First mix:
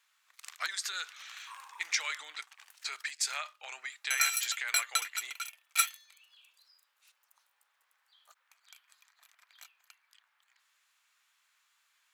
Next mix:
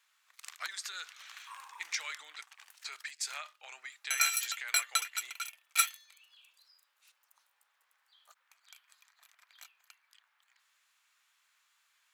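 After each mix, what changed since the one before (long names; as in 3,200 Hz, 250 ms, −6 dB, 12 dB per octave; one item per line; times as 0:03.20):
speech −5.0 dB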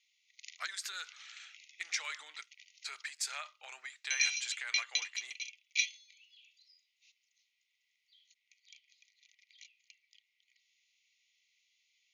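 background: add linear-phase brick-wall band-pass 1,900–7,000 Hz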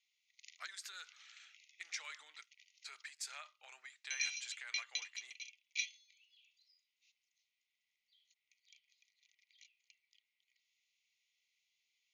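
speech −8.0 dB
background −7.5 dB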